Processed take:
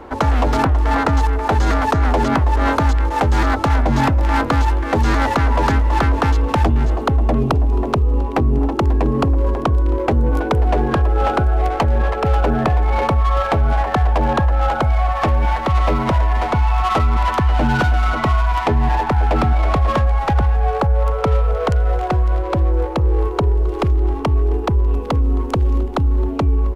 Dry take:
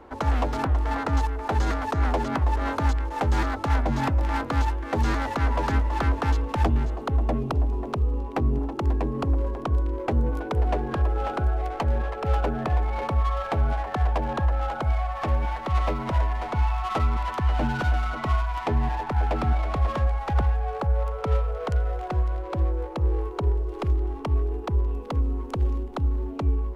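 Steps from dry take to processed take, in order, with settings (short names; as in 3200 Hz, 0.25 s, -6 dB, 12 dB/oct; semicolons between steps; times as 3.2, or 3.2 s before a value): in parallel at -0.5 dB: negative-ratio compressor -26 dBFS; on the sum: echo 0.267 s -23 dB; gain +4 dB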